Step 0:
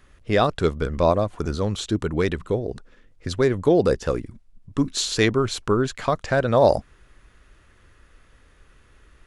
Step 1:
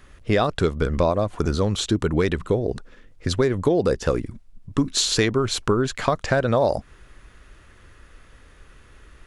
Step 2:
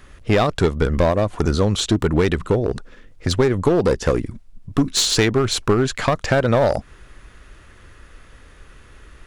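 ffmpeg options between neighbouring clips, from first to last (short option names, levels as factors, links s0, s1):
-af "acompressor=threshold=0.0891:ratio=6,volume=1.78"
-af "aeval=exprs='clip(val(0),-1,0.126)':c=same,volume=1.58"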